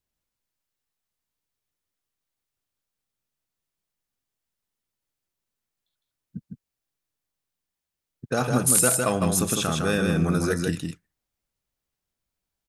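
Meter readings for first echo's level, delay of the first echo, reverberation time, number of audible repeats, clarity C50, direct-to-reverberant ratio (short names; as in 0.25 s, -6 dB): -4.0 dB, 0.157 s, none, 1, none, none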